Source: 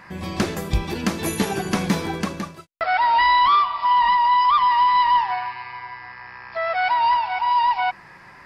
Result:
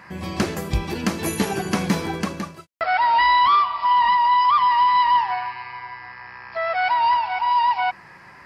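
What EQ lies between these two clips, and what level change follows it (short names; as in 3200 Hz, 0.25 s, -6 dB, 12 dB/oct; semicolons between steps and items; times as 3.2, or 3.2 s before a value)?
HPF 44 Hz; notch 3600 Hz, Q 18; 0.0 dB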